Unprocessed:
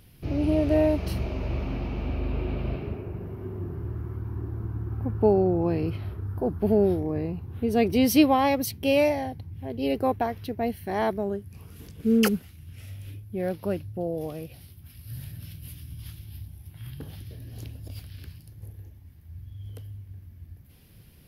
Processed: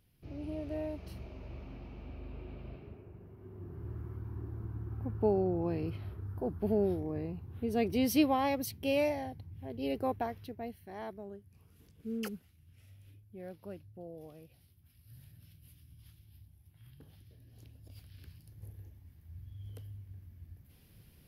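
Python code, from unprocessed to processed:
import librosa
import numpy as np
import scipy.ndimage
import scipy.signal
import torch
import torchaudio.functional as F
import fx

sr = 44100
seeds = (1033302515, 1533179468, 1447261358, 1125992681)

y = fx.gain(x, sr, db=fx.line((3.37, -16.5), (3.91, -8.5), (10.27, -8.5), (10.86, -17.0), (17.57, -17.0), (18.66, -6.5)))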